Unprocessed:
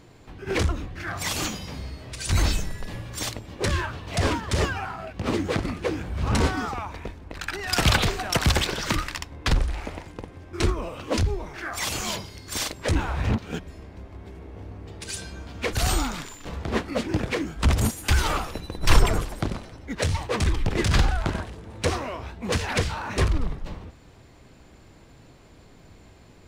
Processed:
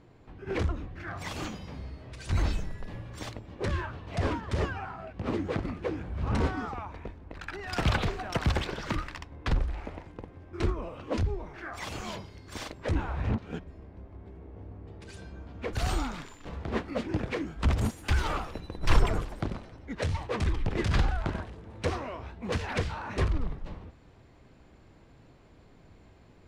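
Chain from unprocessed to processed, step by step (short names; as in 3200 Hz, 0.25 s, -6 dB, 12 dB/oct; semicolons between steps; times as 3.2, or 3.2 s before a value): LPF 1700 Hz 6 dB/oct, from 13.64 s 1000 Hz, from 15.73 s 2700 Hz; gain -5 dB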